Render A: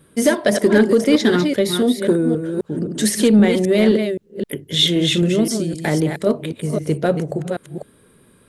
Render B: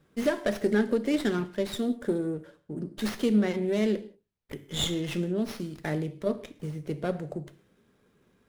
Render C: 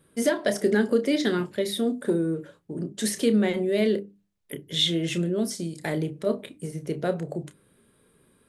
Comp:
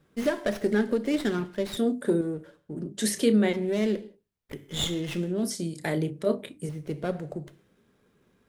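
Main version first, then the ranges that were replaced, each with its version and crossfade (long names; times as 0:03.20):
B
0:01.77–0:02.21: punch in from C
0:02.86–0:03.53: punch in from C
0:05.43–0:06.69: punch in from C
not used: A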